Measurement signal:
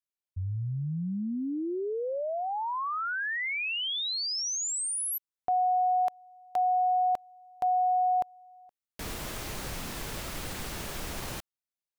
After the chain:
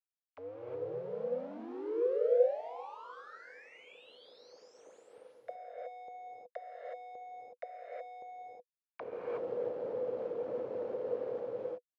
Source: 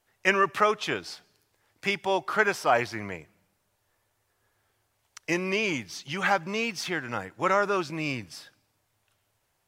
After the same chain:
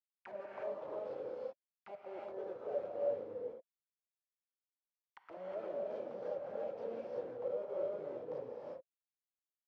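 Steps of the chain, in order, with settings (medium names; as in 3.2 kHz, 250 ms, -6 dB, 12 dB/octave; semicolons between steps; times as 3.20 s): reverse; compression 4:1, threshold -37 dBFS; reverse; feedback echo behind a low-pass 384 ms, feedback 44%, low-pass 1.4 kHz, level -21 dB; Schmitt trigger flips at -38.5 dBFS; auto-wah 490–2700 Hz, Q 11, down, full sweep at -40 dBFS; band-pass 100–5700 Hz; gated-style reverb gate 390 ms rising, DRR -3.5 dB; trim +11.5 dB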